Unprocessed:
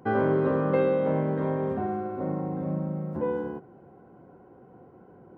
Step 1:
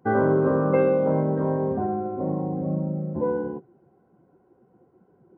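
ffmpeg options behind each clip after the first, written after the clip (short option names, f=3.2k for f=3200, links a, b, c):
-af "afftdn=nr=14:nf=-36,volume=3.5dB"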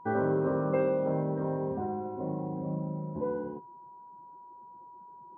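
-af "aeval=exprs='val(0)+0.01*sin(2*PI*970*n/s)':c=same,volume=-7.5dB"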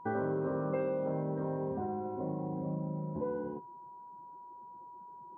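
-af "acompressor=threshold=-34dB:ratio=2"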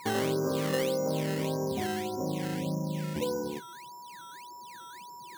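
-af "acrusher=samples=13:mix=1:aa=0.000001:lfo=1:lforange=13:lforate=1.7,volume=4dB"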